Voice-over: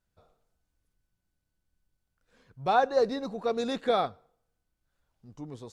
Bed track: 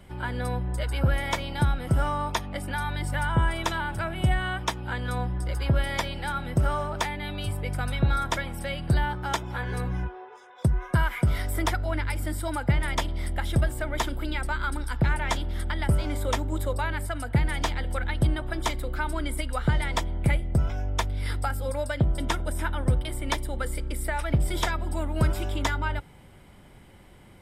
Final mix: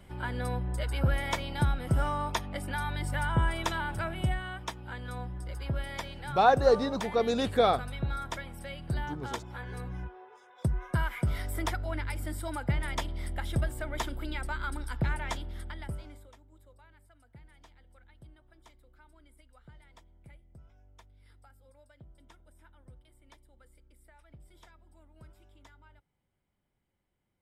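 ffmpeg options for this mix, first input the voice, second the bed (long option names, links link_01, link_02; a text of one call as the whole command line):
ffmpeg -i stem1.wav -i stem2.wav -filter_complex "[0:a]adelay=3700,volume=2dB[link_01];[1:a]afade=type=out:start_time=4.09:duration=0.34:silence=0.501187,afade=type=in:start_time=9.89:duration=0.75:silence=0.668344,afade=type=out:start_time=15.06:duration=1.25:silence=0.0595662[link_02];[link_01][link_02]amix=inputs=2:normalize=0" out.wav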